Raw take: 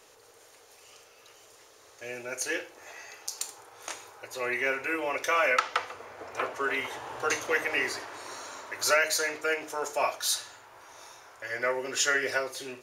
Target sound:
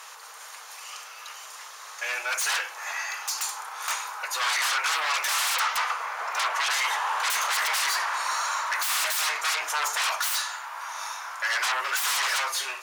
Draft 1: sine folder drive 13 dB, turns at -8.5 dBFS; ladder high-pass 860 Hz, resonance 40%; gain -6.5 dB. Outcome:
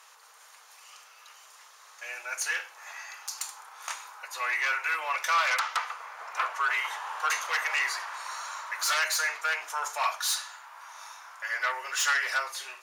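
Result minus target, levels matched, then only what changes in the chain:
sine folder: distortion -17 dB
change: sine folder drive 24 dB, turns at -8.5 dBFS

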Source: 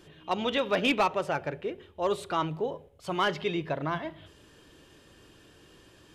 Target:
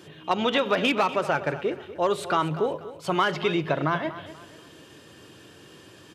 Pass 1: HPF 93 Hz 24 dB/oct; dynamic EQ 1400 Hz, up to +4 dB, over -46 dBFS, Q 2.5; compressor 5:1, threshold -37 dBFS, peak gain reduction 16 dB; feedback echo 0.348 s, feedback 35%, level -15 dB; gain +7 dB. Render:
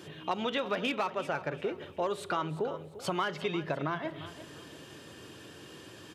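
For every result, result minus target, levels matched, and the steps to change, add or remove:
compressor: peak gain reduction +9 dB; echo 0.106 s late
change: compressor 5:1, threshold -26 dBFS, peak gain reduction 7 dB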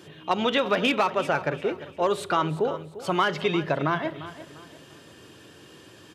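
echo 0.106 s late
change: feedback echo 0.242 s, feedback 35%, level -15 dB

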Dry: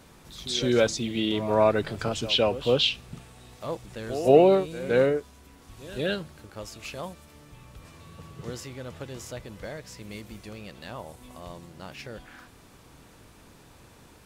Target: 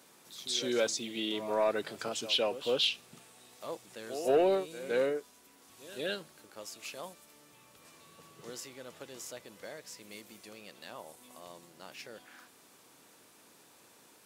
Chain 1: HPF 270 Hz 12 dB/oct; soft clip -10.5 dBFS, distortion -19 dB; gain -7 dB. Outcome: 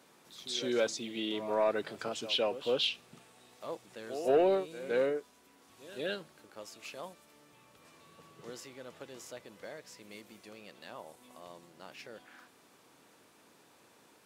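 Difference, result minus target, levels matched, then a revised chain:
8000 Hz band -5.0 dB
HPF 270 Hz 12 dB/oct; high shelf 4800 Hz +8.5 dB; soft clip -10.5 dBFS, distortion -19 dB; gain -7 dB

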